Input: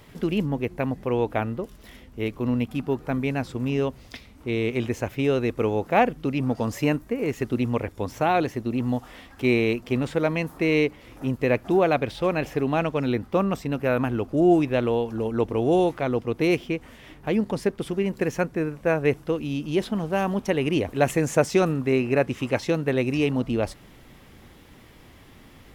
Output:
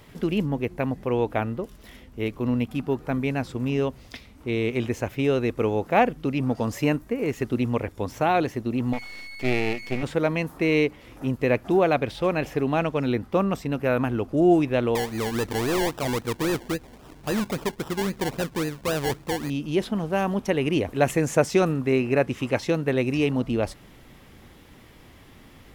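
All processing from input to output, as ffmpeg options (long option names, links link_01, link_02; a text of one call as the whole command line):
ffmpeg -i in.wav -filter_complex "[0:a]asettb=1/sr,asplit=3[link_01][link_02][link_03];[link_01]atrim=end=8.934[link_04];[link_02]atrim=start=8.93:end=10.03,asetpts=PTS-STARTPTS,afade=type=in:duration=0.004:curve=qsin,afade=type=out:start_time=1.096:duration=0.004:curve=qsin,agate=range=-33dB:threshold=-45dB:ratio=3:release=100:detection=peak,aeval=exprs='val(0)+0.0224*sin(2*PI*2200*n/s)':channel_layout=same,aeval=exprs='max(val(0),0)':channel_layout=same[link_05];[link_03]atrim=start=10.026[link_06];[link_04][link_05]acrossfade=duration=0.004:curve1=hsin:curve2=qsin[link_07];[link_07][link_06]acrossfade=duration=0.004:curve1=qsin:curve2=hsin,asettb=1/sr,asplit=3[link_08][link_09][link_10];[link_08]atrim=end=14.954[link_11];[link_09]atrim=start=14.95:end=19.5,asetpts=PTS-STARTPTS,afade=type=in:duration=0.004:curve=qsin,afade=type=out:start_time=4.546:duration=0.004:curve=qsin,acrusher=samples=28:mix=1:aa=0.000001:lfo=1:lforange=16.8:lforate=3.7,asoftclip=type=hard:threshold=-21.5dB[link_12];[link_10]atrim=start=19.496[link_13];[link_11][link_12]acrossfade=duration=0.004:curve1=hsin:curve2=qsin[link_14];[link_14][link_13]acrossfade=duration=0.004:curve1=qsin:curve2=hsin" out.wav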